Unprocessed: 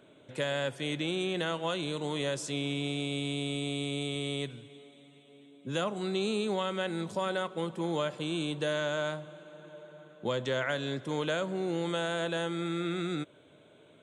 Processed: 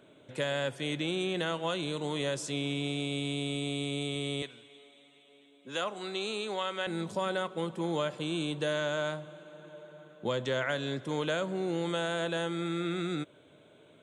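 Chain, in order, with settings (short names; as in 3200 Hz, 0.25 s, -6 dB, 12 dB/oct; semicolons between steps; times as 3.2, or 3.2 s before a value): 4.42–6.87 weighting filter A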